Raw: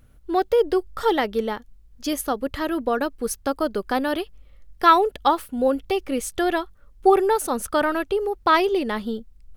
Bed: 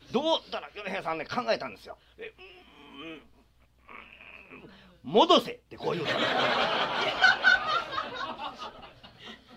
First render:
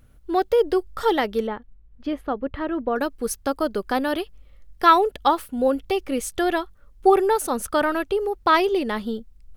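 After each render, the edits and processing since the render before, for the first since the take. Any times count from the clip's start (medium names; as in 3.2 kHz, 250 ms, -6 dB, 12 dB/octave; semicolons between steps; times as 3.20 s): 1.47–2.96 s: distance through air 460 m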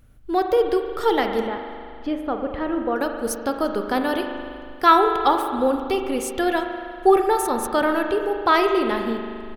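echo from a far wall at 59 m, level -24 dB; spring tank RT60 2.3 s, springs 39 ms, chirp 35 ms, DRR 4.5 dB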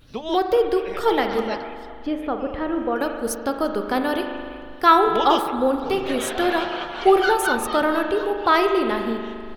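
add bed -3.5 dB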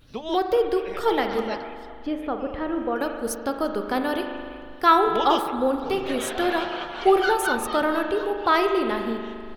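trim -2.5 dB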